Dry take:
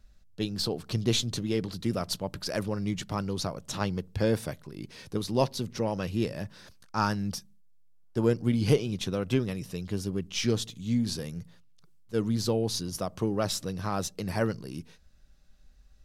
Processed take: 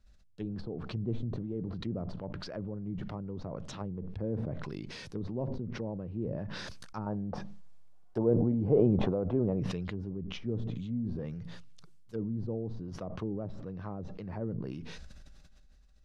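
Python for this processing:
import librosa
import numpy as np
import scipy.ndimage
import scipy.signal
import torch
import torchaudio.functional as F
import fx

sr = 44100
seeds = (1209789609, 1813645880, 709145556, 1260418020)

y = scipy.signal.sosfilt(scipy.signal.bessel(2, 9400.0, 'lowpass', norm='mag', fs=sr, output='sos'), x)
y = fx.env_lowpass_down(y, sr, base_hz=490.0, full_db=-26.5)
y = fx.peak_eq(y, sr, hz=750.0, db=13.5, octaves=1.8, at=(7.06, 9.6))
y = fx.sustainer(y, sr, db_per_s=20.0)
y = y * librosa.db_to_amplitude(-8.0)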